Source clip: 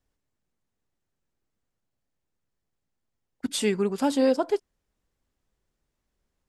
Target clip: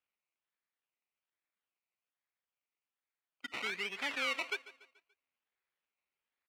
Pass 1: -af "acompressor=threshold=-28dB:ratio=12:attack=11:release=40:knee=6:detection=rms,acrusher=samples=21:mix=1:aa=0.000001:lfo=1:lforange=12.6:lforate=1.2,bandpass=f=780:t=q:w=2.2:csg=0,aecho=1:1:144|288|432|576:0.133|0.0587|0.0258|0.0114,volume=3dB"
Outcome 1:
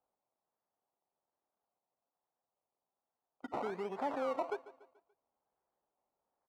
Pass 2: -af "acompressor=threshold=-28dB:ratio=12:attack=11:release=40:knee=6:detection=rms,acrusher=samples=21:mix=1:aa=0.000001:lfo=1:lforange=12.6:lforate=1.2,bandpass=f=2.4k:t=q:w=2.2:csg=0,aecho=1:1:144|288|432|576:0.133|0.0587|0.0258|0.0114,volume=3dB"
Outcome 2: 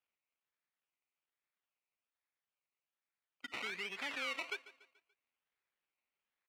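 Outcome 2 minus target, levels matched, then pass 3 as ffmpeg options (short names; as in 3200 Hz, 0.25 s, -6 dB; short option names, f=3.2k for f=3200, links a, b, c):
compressor: peak gain reduction +5.5 dB
-af "acompressor=threshold=-22dB:ratio=12:attack=11:release=40:knee=6:detection=rms,acrusher=samples=21:mix=1:aa=0.000001:lfo=1:lforange=12.6:lforate=1.2,bandpass=f=2.4k:t=q:w=2.2:csg=0,aecho=1:1:144|288|432|576:0.133|0.0587|0.0258|0.0114,volume=3dB"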